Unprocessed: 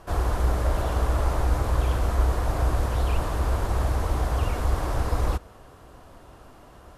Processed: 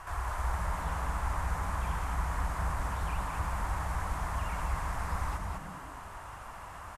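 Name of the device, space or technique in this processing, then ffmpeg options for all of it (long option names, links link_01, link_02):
de-esser from a sidechain: -filter_complex "[0:a]asplit=2[link_01][link_02];[link_02]highpass=frequency=6300:poles=1,apad=whole_len=307426[link_03];[link_01][link_03]sidechaincompress=threshold=-55dB:ratio=4:attack=0.85:release=44,equalizer=frequency=250:width_type=o:width=1:gain=-12,equalizer=frequency=500:width_type=o:width=1:gain=-9,equalizer=frequency=1000:width_type=o:width=1:gain=9,equalizer=frequency=2000:width_type=o:width=1:gain=8,equalizer=frequency=4000:width_type=o:width=1:gain=-4,equalizer=frequency=8000:width_type=o:width=1:gain=6,asplit=5[link_04][link_05][link_06][link_07][link_08];[link_05]adelay=203,afreqshift=-110,volume=-4dB[link_09];[link_06]adelay=406,afreqshift=-220,volume=-13.4dB[link_10];[link_07]adelay=609,afreqshift=-330,volume=-22.7dB[link_11];[link_08]adelay=812,afreqshift=-440,volume=-32.1dB[link_12];[link_04][link_09][link_10][link_11][link_12]amix=inputs=5:normalize=0"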